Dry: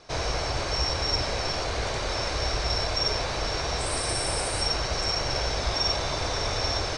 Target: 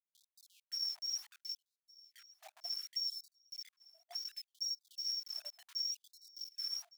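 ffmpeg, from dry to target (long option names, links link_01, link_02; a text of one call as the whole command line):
ffmpeg -i in.wav -filter_complex "[0:a]afftfilt=real='re*gte(hypot(re,im),0.0282)':imag='im*gte(hypot(re,im),0.0282)':win_size=1024:overlap=0.75,highpass=frequency=85:width=0.5412,highpass=frequency=85:width=1.3066,afftfilt=real='re*gte(hypot(re,im),0.224)':imag='im*gte(hypot(re,im),0.224)':win_size=1024:overlap=0.75,equalizer=frequency=450:width=4.4:gain=7.5,acrossover=split=270|2600[link_01][link_02][link_03];[link_01]acompressor=threshold=-48dB:ratio=4[link_04];[link_02]acompressor=threshold=-44dB:ratio=4[link_05];[link_03]acompressor=threshold=-36dB:ratio=4[link_06];[link_04][link_05][link_06]amix=inputs=3:normalize=0,flanger=delay=20:depth=3.1:speed=2.3,acrusher=bits=8:mix=0:aa=0.000001,aecho=1:1:1161|2322:0.0708|0.0234,afftfilt=real='re*gte(b*sr/1024,600*pow(3800/600,0.5+0.5*sin(2*PI*0.68*pts/sr)))':imag='im*gte(b*sr/1024,600*pow(3800/600,0.5+0.5*sin(2*PI*0.68*pts/sr)))':win_size=1024:overlap=0.75,volume=2dB" out.wav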